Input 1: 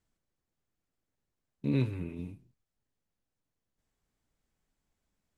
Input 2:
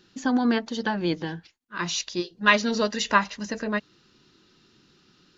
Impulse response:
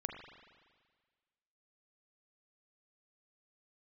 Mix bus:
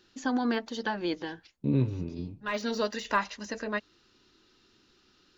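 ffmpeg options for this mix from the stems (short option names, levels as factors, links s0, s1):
-filter_complex "[0:a]lowpass=3200,equalizer=f=2000:t=o:w=1.2:g=-11.5,volume=1.41,asplit=2[s0][s1];[1:a]deesser=0.85,equalizer=f=160:t=o:w=0.63:g=-12,volume=0.668[s2];[s1]apad=whole_len=236864[s3];[s2][s3]sidechaincompress=threshold=0.002:ratio=4:attack=5.9:release=227[s4];[s0][s4]amix=inputs=2:normalize=0"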